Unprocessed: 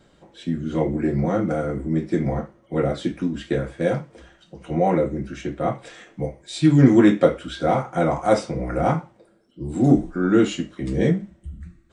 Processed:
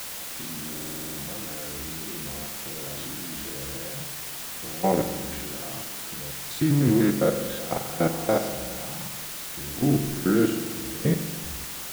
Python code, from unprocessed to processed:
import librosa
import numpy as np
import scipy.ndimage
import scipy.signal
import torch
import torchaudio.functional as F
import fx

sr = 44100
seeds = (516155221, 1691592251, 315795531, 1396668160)

y = fx.spec_steps(x, sr, hold_ms=100)
y = fx.level_steps(y, sr, step_db=20)
y = fx.quant_dither(y, sr, seeds[0], bits=6, dither='triangular')
y = fx.rev_spring(y, sr, rt60_s=1.6, pass_ms=(43,), chirp_ms=25, drr_db=7.0)
y = fx.buffer_glitch(y, sr, at_s=(0.72,), block=2048, repeats=9)